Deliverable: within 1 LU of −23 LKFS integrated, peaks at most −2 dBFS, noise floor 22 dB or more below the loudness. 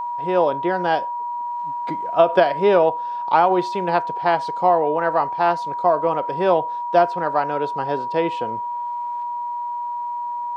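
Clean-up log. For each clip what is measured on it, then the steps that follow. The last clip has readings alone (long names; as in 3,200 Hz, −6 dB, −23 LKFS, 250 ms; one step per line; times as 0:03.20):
interfering tone 960 Hz; level of the tone −24 dBFS; integrated loudness −21.0 LKFS; sample peak −3.0 dBFS; target loudness −23.0 LKFS
→ notch filter 960 Hz, Q 30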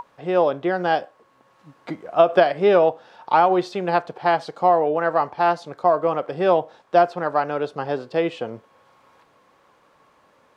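interfering tone none found; integrated loudness −20.5 LKFS; sample peak −3.5 dBFS; target loudness −23.0 LKFS
→ level −2.5 dB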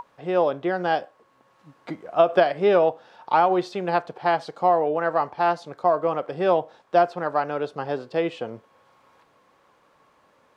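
integrated loudness −23.0 LKFS; sample peak −6.0 dBFS; background noise floor −62 dBFS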